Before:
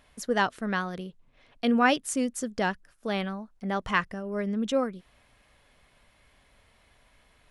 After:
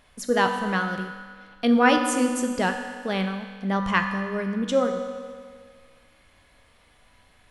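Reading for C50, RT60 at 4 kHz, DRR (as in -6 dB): 6.5 dB, 1.8 s, 4.0 dB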